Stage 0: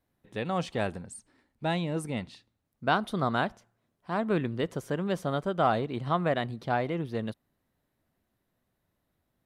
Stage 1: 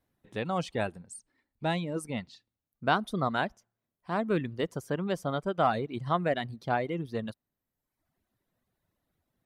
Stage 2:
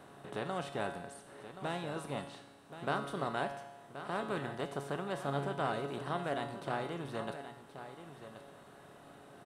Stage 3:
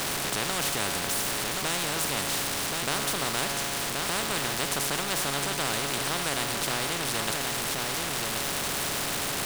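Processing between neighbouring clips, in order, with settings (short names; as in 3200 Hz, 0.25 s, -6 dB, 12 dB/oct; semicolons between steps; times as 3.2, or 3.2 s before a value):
reverb removal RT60 0.97 s
per-bin compression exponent 0.4; resonator 140 Hz, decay 0.94 s, harmonics all, mix 80%; on a send: echo 1.077 s -11.5 dB; on the sum: gain -1 dB
zero-crossing step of -46 dBFS; low shelf 480 Hz +7 dB; spectral compressor 4:1; gain +5.5 dB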